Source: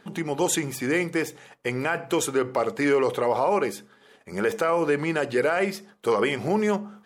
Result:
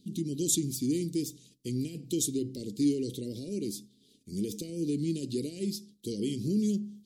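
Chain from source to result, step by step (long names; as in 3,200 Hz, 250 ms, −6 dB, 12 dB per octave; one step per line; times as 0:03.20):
elliptic band-stop filter 300–4,000 Hz, stop band 60 dB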